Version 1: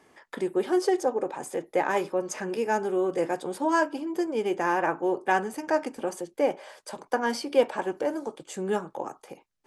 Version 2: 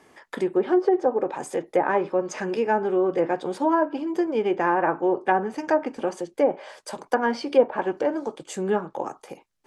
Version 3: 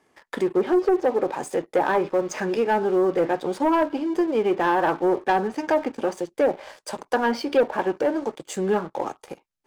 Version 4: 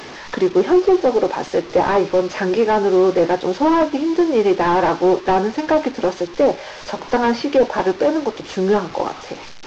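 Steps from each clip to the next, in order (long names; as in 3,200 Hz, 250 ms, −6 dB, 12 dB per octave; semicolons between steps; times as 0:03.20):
treble cut that deepens with the level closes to 1,000 Hz, closed at −19 dBFS; level +4 dB
leveller curve on the samples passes 2; level −5 dB
linear delta modulator 32 kbit/s, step −35 dBFS; level +6.5 dB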